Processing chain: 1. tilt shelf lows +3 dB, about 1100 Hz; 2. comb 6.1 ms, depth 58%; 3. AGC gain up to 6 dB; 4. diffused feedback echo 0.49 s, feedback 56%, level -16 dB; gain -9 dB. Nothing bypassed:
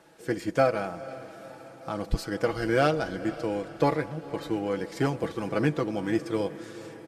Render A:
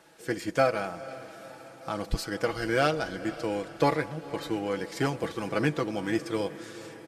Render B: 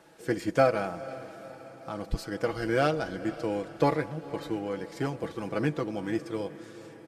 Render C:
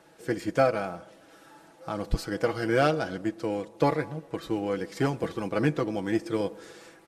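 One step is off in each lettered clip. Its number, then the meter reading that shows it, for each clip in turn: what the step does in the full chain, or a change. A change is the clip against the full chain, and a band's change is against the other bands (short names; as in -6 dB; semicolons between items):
1, 8 kHz band +4.0 dB; 3, crest factor change +2.0 dB; 4, echo-to-direct -14.5 dB to none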